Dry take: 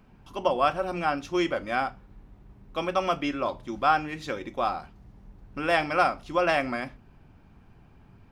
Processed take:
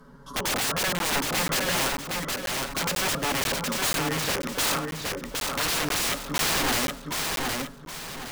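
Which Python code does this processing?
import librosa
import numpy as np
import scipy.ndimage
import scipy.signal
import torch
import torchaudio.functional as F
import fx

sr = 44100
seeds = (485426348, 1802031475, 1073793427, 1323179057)

p1 = fx.low_shelf(x, sr, hz=140.0, db=-9.5)
p2 = fx.fixed_phaser(p1, sr, hz=500.0, stages=8)
p3 = p2 + 0.95 * np.pad(p2, (int(7.2 * sr / 1000.0), 0))[:len(p2)]
p4 = fx.rider(p3, sr, range_db=4, speed_s=2.0)
p5 = p3 + (p4 * librosa.db_to_amplitude(-1.5))
p6 = 10.0 ** (-13.5 / 20.0) * (np.abs((p5 / 10.0 ** (-13.5 / 20.0) + 3.0) % 4.0 - 2.0) - 1.0)
p7 = fx.env_lowpass_down(p6, sr, base_hz=1300.0, full_db=-22.5)
p8 = (np.mod(10.0 ** (25.5 / 20.0) * p7 + 1.0, 2.0) - 1.0) / 10.0 ** (25.5 / 20.0)
p9 = p8 + fx.echo_feedback(p8, sr, ms=766, feedback_pct=36, wet_db=-3, dry=0)
p10 = fx.buffer_crackle(p9, sr, first_s=0.99, period_s=0.49, block=512, kind='zero')
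y = p10 * librosa.db_to_amplitude(4.0)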